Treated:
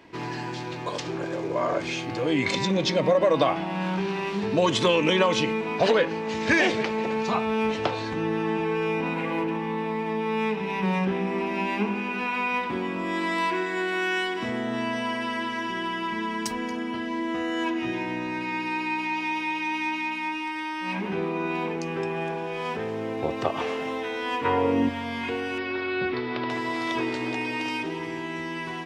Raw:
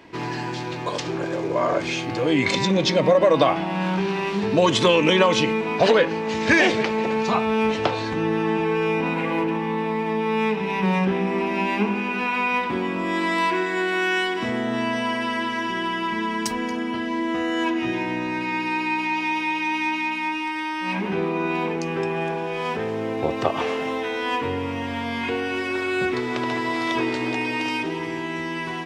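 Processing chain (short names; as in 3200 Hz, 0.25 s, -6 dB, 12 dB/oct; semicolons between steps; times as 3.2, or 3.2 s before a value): 24.44–24.88 bell 1400 Hz -> 220 Hz +14 dB 1.9 oct; 25.58–26.5 steep low-pass 4900 Hz 48 dB/oct; gain -4 dB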